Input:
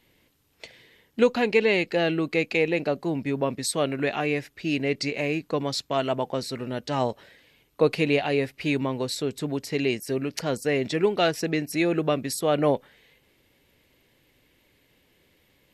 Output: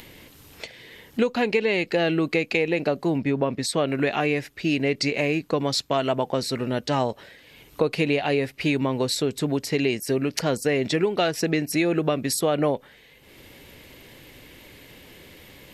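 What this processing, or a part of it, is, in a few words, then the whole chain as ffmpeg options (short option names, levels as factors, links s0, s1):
upward and downward compression: -filter_complex "[0:a]asettb=1/sr,asplit=3[s0][s1][s2];[s0]atrim=end=3.184[s3];[s1]atrim=start=3.18:end=3.88,asetpts=PTS-STARTPTS,afade=t=in:d=0.004:c=qsin,afade=t=out:st=0.696:d=0.004:c=qsin,highshelf=f=6500:g=-11.5[s4];[s2]atrim=start=3.876[s5];[s3][s4]acrossfade=d=0.004:c1=hsin:c2=qsin[s6];[s6][s5]acrossfade=d=0.004:c1=qsin:c2=hsin,acompressor=mode=upward:threshold=0.00891:ratio=2.5,acompressor=threshold=0.0631:ratio=6,volume=1.88"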